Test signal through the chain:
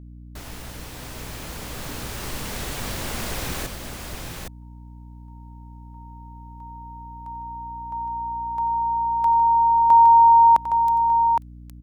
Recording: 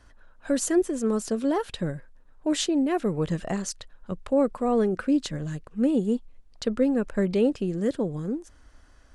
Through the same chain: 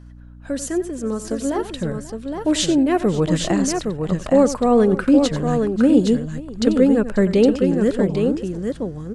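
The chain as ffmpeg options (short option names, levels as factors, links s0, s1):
-af "dynaudnorm=f=820:g=5:m=2.99,aecho=1:1:91|538|814:0.211|0.112|0.531,aeval=exprs='val(0)+0.0112*(sin(2*PI*60*n/s)+sin(2*PI*2*60*n/s)/2+sin(2*PI*3*60*n/s)/3+sin(2*PI*4*60*n/s)/4+sin(2*PI*5*60*n/s)/5)':c=same,volume=0.891"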